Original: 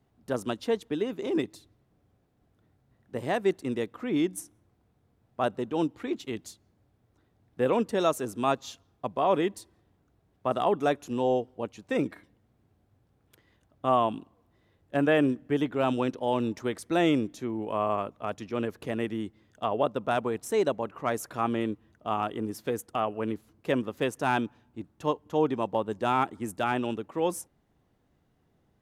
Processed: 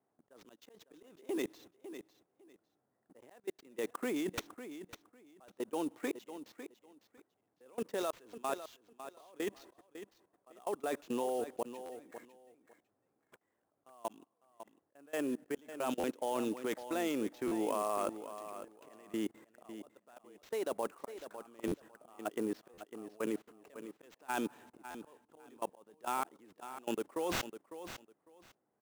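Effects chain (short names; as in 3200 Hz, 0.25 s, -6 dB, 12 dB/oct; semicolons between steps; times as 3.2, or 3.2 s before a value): HPF 340 Hz 12 dB/oct; low-pass opened by the level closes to 1500 Hz, open at -24 dBFS; reverse; compressor 16:1, threshold -36 dBFS, peak gain reduction 18 dB; reverse; auto swell 0.633 s; level quantiser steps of 24 dB; sample-rate reducer 9900 Hz, jitter 20%; on a send: feedback echo 0.552 s, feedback 18%, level -11.5 dB; on the sum: stuck buffer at 11.85/15.99/17.47/21.67/22.73/24.9, samples 512, times 3; gain +13.5 dB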